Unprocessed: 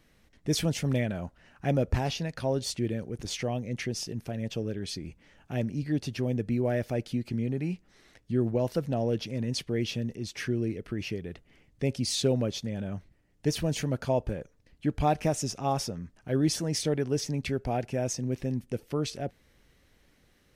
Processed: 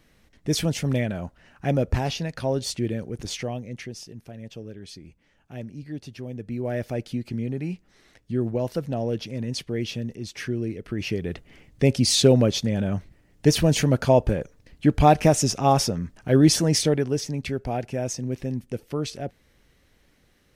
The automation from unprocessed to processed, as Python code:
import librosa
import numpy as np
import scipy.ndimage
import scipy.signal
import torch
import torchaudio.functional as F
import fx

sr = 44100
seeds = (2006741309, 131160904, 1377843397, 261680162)

y = fx.gain(x, sr, db=fx.line((3.25, 3.5), (4.05, -6.0), (6.33, -6.0), (6.81, 1.5), (10.77, 1.5), (11.3, 9.5), (16.7, 9.5), (17.24, 2.0)))